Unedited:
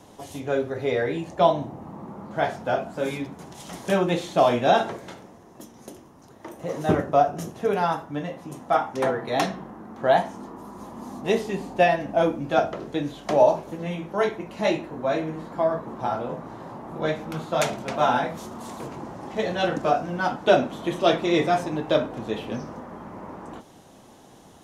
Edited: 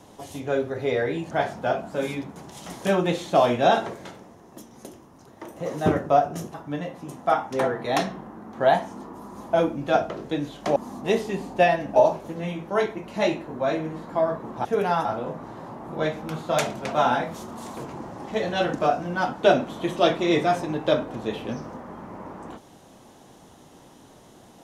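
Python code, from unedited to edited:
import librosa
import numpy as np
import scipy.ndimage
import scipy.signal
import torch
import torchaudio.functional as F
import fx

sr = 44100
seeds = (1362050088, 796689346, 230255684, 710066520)

y = fx.edit(x, sr, fx.cut(start_s=1.31, length_s=1.03),
    fx.move(start_s=7.57, length_s=0.4, to_s=16.08),
    fx.move(start_s=10.96, length_s=1.2, to_s=13.39), tone=tone)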